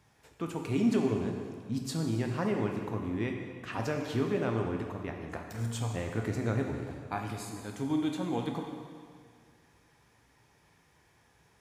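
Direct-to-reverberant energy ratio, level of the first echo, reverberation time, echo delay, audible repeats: 2.0 dB, no echo audible, 2.0 s, no echo audible, no echo audible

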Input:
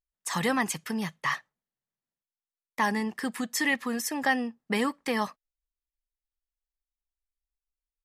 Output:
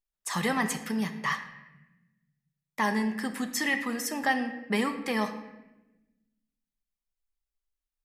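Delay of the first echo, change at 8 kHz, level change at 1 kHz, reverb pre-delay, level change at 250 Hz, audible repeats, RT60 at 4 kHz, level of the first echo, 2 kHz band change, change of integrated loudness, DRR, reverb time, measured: no echo audible, −1.0 dB, −0.5 dB, 5 ms, +0.5 dB, no echo audible, 0.75 s, no echo audible, −0.5 dB, −0.5 dB, 6.0 dB, 1.0 s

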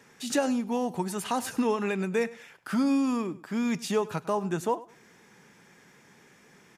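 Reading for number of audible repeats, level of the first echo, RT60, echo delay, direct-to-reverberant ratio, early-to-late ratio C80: 2, −19.0 dB, no reverb audible, 101 ms, no reverb audible, no reverb audible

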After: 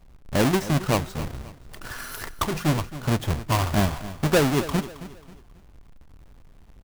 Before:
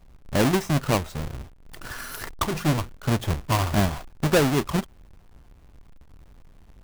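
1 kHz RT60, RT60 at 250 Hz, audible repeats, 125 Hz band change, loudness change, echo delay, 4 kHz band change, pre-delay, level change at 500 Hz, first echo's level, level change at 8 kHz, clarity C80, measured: no reverb audible, no reverb audible, 3, 0.0 dB, 0.0 dB, 269 ms, 0.0 dB, no reverb audible, 0.0 dB, −15.0 dB, 0.0 dB, no reverb audible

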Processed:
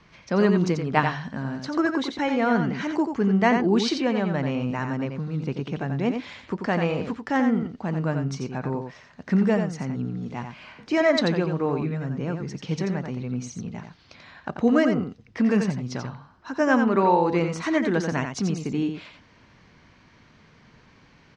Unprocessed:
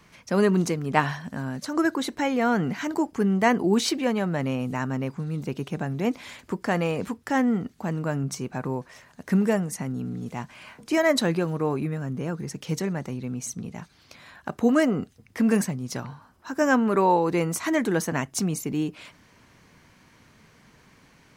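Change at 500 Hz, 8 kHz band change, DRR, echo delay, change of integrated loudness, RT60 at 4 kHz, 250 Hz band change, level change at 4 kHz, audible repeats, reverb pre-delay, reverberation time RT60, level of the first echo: +1.0 dB, −8.0 dB, no reverb audible, 88 ms, +1.0 dB, no reverb audible, +1.5 dB, 0.0 dB, 1, no reverb audible, no reverb audible, −6.5 dB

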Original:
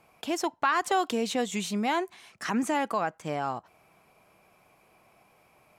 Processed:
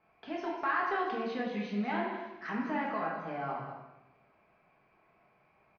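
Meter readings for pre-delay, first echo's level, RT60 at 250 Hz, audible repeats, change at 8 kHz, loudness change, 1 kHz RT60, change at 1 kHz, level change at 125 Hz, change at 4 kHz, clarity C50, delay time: 5 ms, −9.5 dB, 1.2 s, 1, below −25 dB, −5.5 dB, 0.90 s, −5.5 dB, −3.5 dB, −13.0 dB, 1.5 dB, 196 ms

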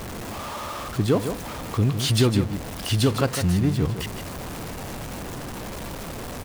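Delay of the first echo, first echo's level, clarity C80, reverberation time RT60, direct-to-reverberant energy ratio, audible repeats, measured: 156 ms, −8.5 dB, no reverb audible, no reverb audible, no reverb audible, 1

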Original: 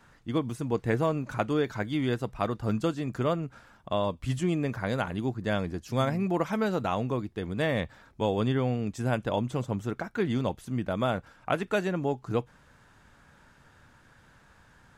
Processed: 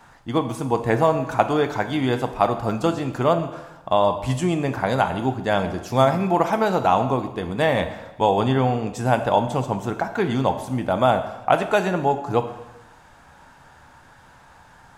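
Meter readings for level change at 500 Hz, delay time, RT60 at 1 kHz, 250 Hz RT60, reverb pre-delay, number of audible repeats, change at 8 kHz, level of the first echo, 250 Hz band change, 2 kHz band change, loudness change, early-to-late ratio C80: +9.0 dB, no echo audible, 0.95 s, 1.0 s, 5 ms, no echo audible, +8.5 dB, no echo audible, +5.5 dB, +7.5 dB, +8.0 dB, 12.5 dB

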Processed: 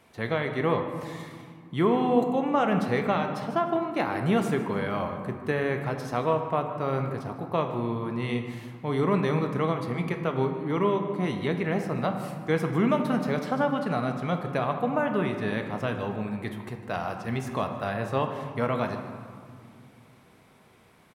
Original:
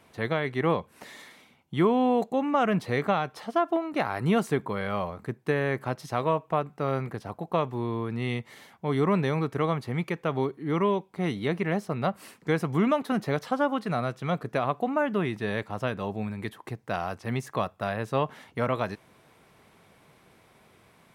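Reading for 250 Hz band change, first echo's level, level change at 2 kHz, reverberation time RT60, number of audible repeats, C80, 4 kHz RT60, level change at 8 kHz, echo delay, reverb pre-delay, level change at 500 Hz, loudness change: +1.0 dB, −16.5 dB, 0.0 dB, 2.2 s, 1, 7.5 dB, 1.0 s, can't be measured, 153 ms, 3 ms, +0.5 dB, +0.5 dB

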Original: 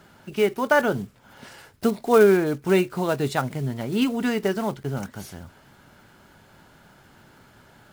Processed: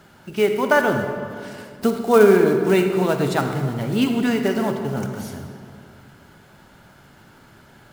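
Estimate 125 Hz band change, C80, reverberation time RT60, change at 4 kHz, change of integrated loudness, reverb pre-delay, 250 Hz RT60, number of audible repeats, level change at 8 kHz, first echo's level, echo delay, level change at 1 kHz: +4.0 dB, 6.5 dB, 2.2 s, +3.0 dB, +3.5 dB, 40 ms, 2.5 s, no echo audible, +2.5 dB, no echo audible, no echo audible, +3.0 dB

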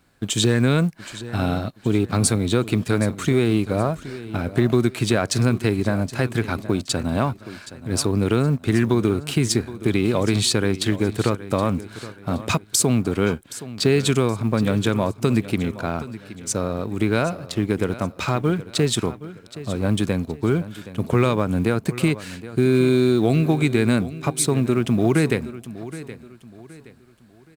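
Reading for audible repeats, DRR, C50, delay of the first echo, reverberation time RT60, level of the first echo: 3, no reverb audible, no reverb audible, 771 ms, no reverb audible, −15.5 dB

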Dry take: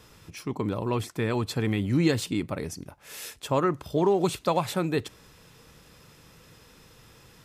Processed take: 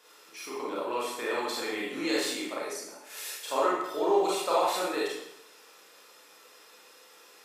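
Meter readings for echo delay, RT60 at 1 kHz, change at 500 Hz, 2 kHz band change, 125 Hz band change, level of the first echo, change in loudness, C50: no echo audible, 0.80 s, −1.0 dB, +1.5 dB, below −25 dB, no echo audible, −2.5 dB, −1.5 dB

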